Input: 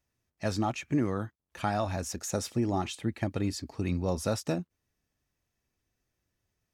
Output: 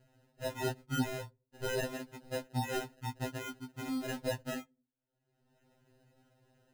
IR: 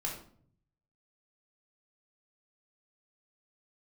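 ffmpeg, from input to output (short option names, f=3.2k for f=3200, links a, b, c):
-filter_complex "[0:a]lowpass=f=1.2k:p=1,afwtdn=0.00891,highpass=f=230:p=1,equalizer=f=410:w=2.2:g=-9,acompressor=mode=upward:threshold=-41dB:ratio=2.5,crystalizer=i=2:c=0,acrusher=samples=39:mix=1:aa=0.000001,asplit=2[a][b];[1:a]atrim=start_sample=2205,asetrate=70560,aresample=44100[c];[b][c]afir=irnorm=-1:irlink=0,volume=-22dB[d];[a][d]amix=inputs=2:normalize=0,afftfilt=real='re*2.45*eq(mod(b,6),0)':imag='im*2.45*eq(mod(b,6),0)':win_size=2048:overlap=0.75,volume=2dB"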